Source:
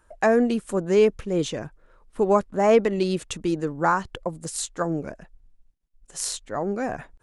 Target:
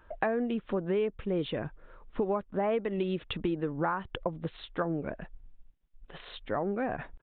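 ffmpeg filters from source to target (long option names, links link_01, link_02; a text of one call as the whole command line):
ffmpeg -i in.wav -af "acompressor=threshold=-32dB:ratio=5,aresample=8000,aresample=44100,volume=3.5dB" out.wav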